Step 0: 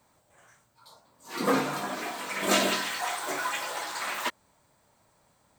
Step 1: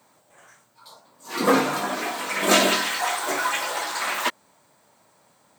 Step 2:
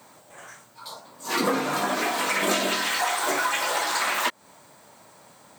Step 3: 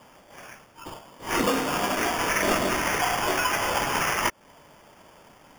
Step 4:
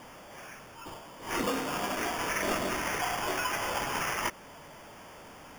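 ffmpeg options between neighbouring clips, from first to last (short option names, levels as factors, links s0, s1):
-af "highpass=170,volume=2.11"
-af "acompressor=threshold=0.0316:ratio=6,volume=2.51"
-af "acrusher=samples=11:mix=1:aa=0.000001"
-af "aeval=exprs='val(0)+0.5*0.0126*sgn(val(0))':c=same,volume=0.422"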